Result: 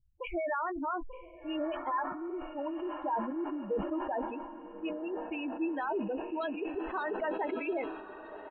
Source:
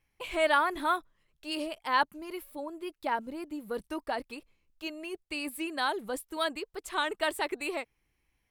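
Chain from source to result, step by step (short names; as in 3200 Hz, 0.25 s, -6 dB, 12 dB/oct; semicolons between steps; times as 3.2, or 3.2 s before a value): spectral gate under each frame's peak -10 dB strong; low-pass opened by the level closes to 310 Hz, open at -29.5 dBFS; dynamic EQ 2900 Hz, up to -7 dB, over -50 dBFS, Q 1.1; in parallel at -1.5 dB: compressor, threshold -44 dBFS, peak gain reduction 19.5 dB; on the sum: limiter -26.5 dBFS, peak gain reduction 10.5 dB; doubler 15 ms -11 dB; on a send: diffused feedback echo 1.203 s, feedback 54%, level -12 dB; on the sum: downsampling 8000 Hz; sustainer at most 56 dB/s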